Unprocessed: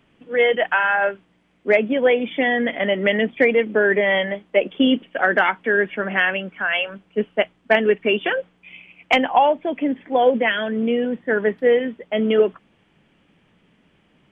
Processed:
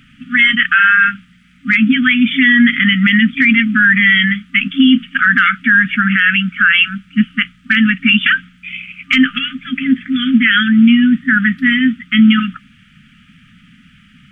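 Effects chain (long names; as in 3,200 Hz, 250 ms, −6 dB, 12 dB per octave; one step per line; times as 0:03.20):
brick-wall band-stop 270–1,200 Hz
boost into a limiter +16 dB
level −1 dB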